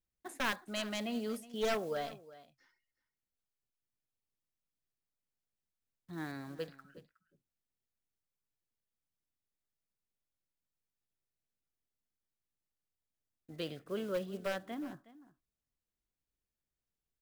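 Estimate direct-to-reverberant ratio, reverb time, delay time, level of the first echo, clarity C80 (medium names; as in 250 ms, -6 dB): no reverb, no reverb, 366 ms, -18.0 dB, no reverb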